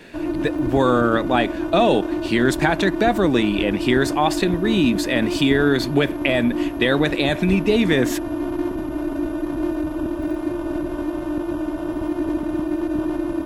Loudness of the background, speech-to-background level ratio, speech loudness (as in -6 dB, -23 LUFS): -25.5 LUFS, 5.5 dB, -20.0 LUFS